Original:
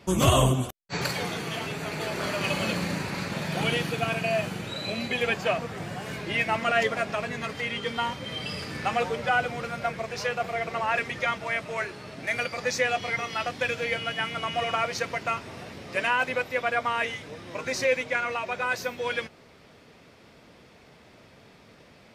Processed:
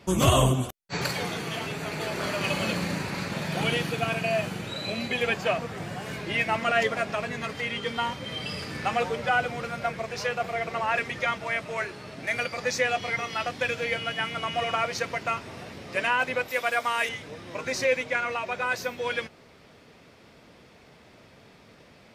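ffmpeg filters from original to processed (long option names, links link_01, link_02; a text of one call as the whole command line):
ffmpeg -i in.wav -filter_complex "[0:a]asettb=1/sr,asplit=3[link_01][link_02][link_03];[link_01]atrim=end=16.484[link_04];[link_02]atrim=start=16.48:end=17.09,asetpts=PTS-STARTPTS,afade=type=in:duration=0.004:curve=qsin,afade=type=out:start_time=0.606:duration=0.004:curve=qsin,aemphasis=mode=production:type=bsi[link_05];[link_03]atrim=start=17.086[link_06];[link_04][link_05]acrossfade=duration=0.004:curve1=hsin:curve2=qsin[link_07];[link_07][link_06]acrossfade=duration=0.004:curve1=qsin:curve2=hsin" out.wav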